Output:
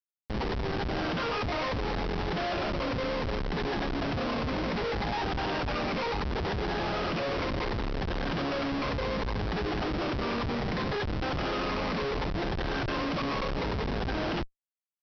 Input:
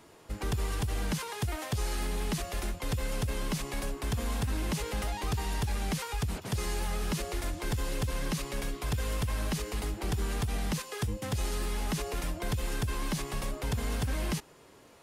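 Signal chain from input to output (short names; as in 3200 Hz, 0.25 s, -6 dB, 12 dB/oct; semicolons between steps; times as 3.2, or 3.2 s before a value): moving spectral ripple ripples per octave 0.92, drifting -0.68 Hz, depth 11 dB; on a send at -18 dB: bell 290 Hz +12.5 dB 1.7 oct + reverb RT60 0.50 s, pre-delay 17 ms; on the sum: limiter -26.5 dBFS, peak gain reduction 8.5 dB; in parallel at -3 dB: hard clip -34.5 dBFS, distortion -11 dB; on the sum: three-band isolator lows -17 dB, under 260 Hz, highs -16 dB, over 4000 Hz; notches 50/100/150/200/250/300/350/400/450 Hz; Schmitt trigger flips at -38.5 dBFS; steep low-pass 5500 Hz 96 dB/oct; gain +8 dB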